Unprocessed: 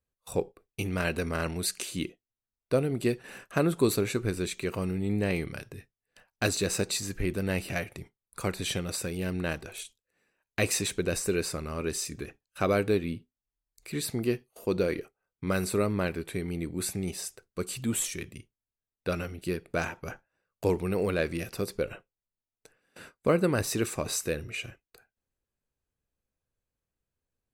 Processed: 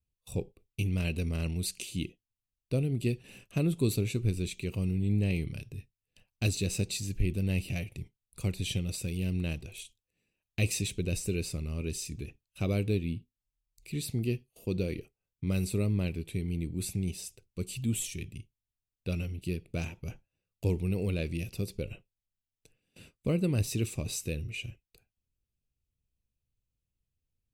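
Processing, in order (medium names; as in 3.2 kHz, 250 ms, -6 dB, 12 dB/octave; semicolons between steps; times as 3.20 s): FFT filter 110 Hz 0 dB, 1.6 kHz -25 dB, 2.6 kHz -6 dB, 4.4 kHz -10 dB; 9.08–9.58 s: tape noise reduction on one side only encoder only; trim +5 dB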